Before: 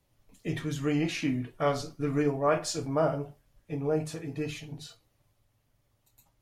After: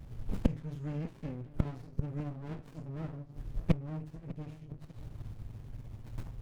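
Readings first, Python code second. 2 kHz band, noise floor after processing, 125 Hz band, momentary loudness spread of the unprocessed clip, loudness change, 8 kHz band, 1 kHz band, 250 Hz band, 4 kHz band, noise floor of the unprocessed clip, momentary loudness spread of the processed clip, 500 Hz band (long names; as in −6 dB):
−15.5 dB, −53 dBFS, −1.5 dB, 13 LU, −9.0 dB, below −20 dB, −16.5 dB, −6.5 dB, −18.0 dB, −73 dBFS, 14 LU, −16.0 dB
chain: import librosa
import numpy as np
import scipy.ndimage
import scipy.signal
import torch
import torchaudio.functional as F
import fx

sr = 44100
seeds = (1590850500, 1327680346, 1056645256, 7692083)

p1 = fx.rider(x, sr, range_db=3, speed_s=2.0)
p2 = x + F.gain(torch.from_numpy(p1), -1.0).numpy()
p3 = fx.bass_treble(p2, sr, bass_db=3, treble_db=1)
p4 = fx.gate_flip(p3, sr, shuts_db=-26.0, range_db=-31)
p5 = fx.low_shelf(p4, sr, hz=250.0, db=10.0)
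p6 = p5 + fx.echo_wet_lowpass(p5, sr, ms=598, feedback_pct=32, hz=2200.0, wet_db=-17, dry=0)
p7 = fx.running_max(p6, sr, window=65)
y = F.gain(torch.from_numpy(p7), 9.5).numpy()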